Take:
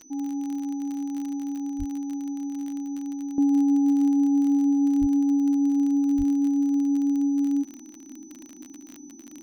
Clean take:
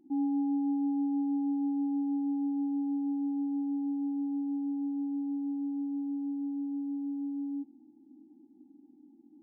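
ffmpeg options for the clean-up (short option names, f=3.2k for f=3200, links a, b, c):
-filter_complex "[0:a]adeclick=t=4,bandreject=f=6k:w=30,asplit=3[a][b][c];[a]afade=t=out:st=1.78:d=0.02[d];[b]highpass=f=140:w=0.5412,highpass=f=140:w=1.3066,afade=t=in:st=1.78:d=0.02,afade=t=out:st=1.9:d=0.02[e];[c]afade=t=in:st=1.9:d=0.02[f];[d][e][f]amix=inputs=3:normalize=0,asplit=3[g][h][i];[g]afade=t=out:st=5:d=0.02[j];[h]highpass=f=140:w=0.5412,highpass=f=140:w=1.3066,afade=t=in:st=5:d=0.02,afade=t=out:st=5.12:d=0.02[k];[i]afade=t=in:st=5.12:d=0.02[l];[j][k][l]amix=inputs=3:normalize=0,asplit=3[m][n][o];[m]afade=t=out:st=6.17:d=0.02[p];[n]highpass=f=140:w=0.5412,highpass=f=140:w=1.3066,afade=t=in:st=6.17:d=0.02,afade=t=out:st=6.29:d=0.02[q];[o]afade=t=in:st=6.29:d=0.02[r];[p][q][r]amix=inputs=3:normalize=0,asetnsamples=n=441:p=0,asendcmd='3.38 volume volume -12dB',volume=0dB"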